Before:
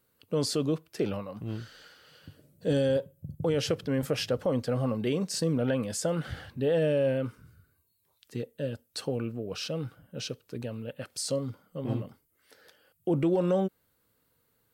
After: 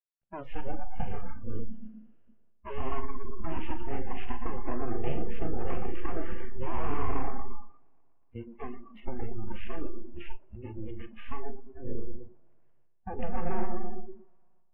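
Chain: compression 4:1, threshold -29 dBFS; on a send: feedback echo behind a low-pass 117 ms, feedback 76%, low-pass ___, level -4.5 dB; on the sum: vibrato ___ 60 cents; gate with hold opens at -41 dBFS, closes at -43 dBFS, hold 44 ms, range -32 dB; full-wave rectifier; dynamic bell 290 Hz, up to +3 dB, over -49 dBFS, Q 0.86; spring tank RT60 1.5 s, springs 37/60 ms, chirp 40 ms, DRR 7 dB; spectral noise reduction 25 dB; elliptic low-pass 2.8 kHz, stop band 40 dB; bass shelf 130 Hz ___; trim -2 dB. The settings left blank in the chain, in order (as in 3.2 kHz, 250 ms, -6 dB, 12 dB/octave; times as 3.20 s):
910 Hz, 6.9 Hz, +7.5 dB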